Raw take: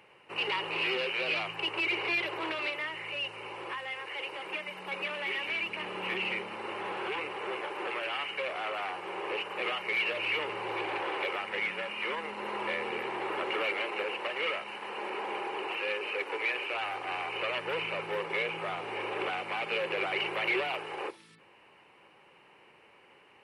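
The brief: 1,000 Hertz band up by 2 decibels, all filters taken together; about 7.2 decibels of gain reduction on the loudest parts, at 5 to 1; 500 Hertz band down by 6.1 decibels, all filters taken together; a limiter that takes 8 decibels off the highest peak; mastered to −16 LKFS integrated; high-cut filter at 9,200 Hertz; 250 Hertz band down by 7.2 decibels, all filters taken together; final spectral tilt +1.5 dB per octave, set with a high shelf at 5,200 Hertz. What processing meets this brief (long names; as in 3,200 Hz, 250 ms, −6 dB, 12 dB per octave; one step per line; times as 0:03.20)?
low-pass filter 9,200 Hz
parametric band 250 Hz −9 dB
parametric band 500 Hz −6 dB
parametric band 1,000 Hz +4.5 dB
high-shelf EQ 5,200 Hz +5 dB
downward compressor 5 to 1, threshold −34 dBFS
level +23.5 dB
brickwall limiter −9 dBFS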